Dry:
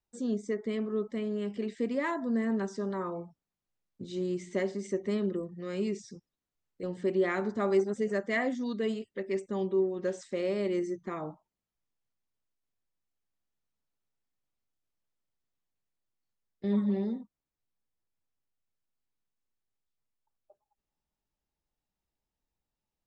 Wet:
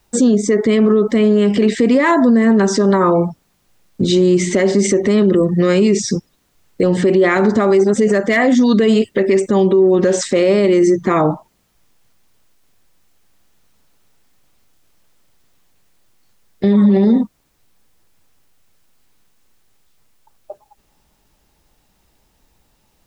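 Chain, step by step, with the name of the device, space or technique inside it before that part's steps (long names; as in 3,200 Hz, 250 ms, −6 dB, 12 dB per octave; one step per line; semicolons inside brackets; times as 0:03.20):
loud club master (downward compressor 2.5 to 1, threshold −33 dBFS, peak gain reduction 8.5 dB; hard clipping −25 dBFS, distortion −39 dB; boost into a limiter +33.5 dB)
level −4.5 dB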